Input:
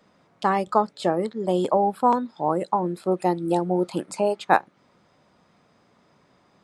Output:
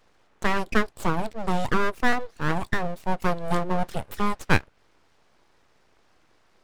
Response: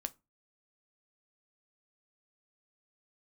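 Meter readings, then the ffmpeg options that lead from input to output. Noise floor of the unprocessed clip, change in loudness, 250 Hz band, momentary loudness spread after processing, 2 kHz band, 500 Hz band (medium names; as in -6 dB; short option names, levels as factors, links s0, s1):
-62 dBFS, -3.5 dB, -3.0 dB, 5 LU, +6.0 dB, -6.5 dB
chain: -af "aeval=exprs='abs(val(0))':c=same"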